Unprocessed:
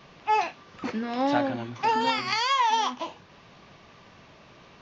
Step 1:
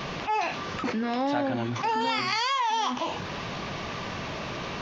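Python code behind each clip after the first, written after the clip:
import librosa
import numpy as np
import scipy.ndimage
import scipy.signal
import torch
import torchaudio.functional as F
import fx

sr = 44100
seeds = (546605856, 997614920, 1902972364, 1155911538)

y = fx.env_flatten(x, sr, amount_pct=70)
y = y * 10.0 ** (-5.0 / 20.0)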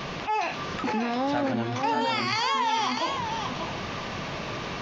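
y = x + 10.0 ** (-6.0 / 20.0) * np.pad(x, (int(590 * sr / 1000.0), 0))[:len(x)]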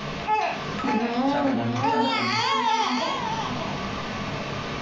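y = fx.room_shoebox(x, sr, seeds[0], volume_m3=340.0, walls='furnished', distance_m=1.5)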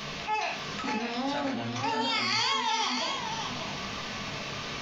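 y = fx.high_shelf(x, sr, hz=2200.0, db=12.0)
y = y * 10.0 ** (-9.0 / 20.0)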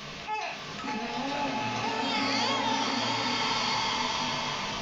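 y = fx.rev_bloom(x, sr, seeds[1], attack_ms=1370, drr_db=-2.5)
y = y * 10.0 ** (-3.0 / 20.0)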